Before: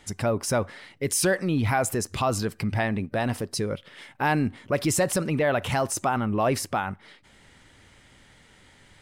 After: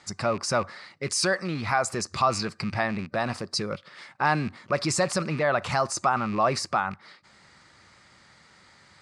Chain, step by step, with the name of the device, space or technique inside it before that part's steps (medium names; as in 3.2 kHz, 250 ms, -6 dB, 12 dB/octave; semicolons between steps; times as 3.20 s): 1.12–1.89 s: bass shelf 350 Hz -4 dB; car door speaker with a rattle (rattle on loud lows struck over -31 dBFS, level -30 dBFS; cabinet simulation 100–8200 Hz, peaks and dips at 110 Hz -5 dB, 270 Hz -8 dB, 440 Hz -5 dB, 1.2 kHz +8 dB, 3.1 kHz -8 dB, 4.6 kHz +9 dB)